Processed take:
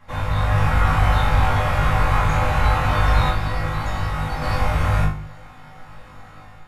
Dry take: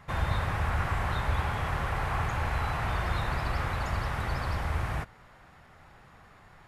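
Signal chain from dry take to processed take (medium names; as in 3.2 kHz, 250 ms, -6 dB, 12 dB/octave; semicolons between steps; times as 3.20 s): level rider gain up to 6.5 dB; 0.74–1.75 s: hard clipper -16.5 dBFS, distortion -24 dB; 3.29–4.42 s: feedback comb 160 Hz, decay 0.18 s, harmonics all, mix 60%; on a send: flutter echo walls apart 3.4 m, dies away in 0.36 s; on the sum: simulated room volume 160 m³, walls furnished, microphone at 2.3 m; trim -3 dB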